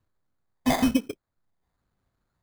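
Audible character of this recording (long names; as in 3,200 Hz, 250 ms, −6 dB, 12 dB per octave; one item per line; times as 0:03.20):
phaser sweep stages 12, 1.1 Hz, lowest notch 440–1,100 Hz
aliases and images of a low sample rate 2,800 Hz, jitter 0%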